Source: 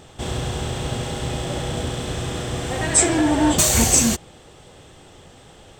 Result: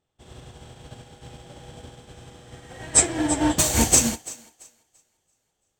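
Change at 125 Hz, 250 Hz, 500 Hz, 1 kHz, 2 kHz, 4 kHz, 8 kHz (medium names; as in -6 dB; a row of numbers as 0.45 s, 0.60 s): -8.5 dB, -5.5 dB, -6.5 dB, -5.5 dB, -5.5 dB, -5.0 dB, -2.0 dB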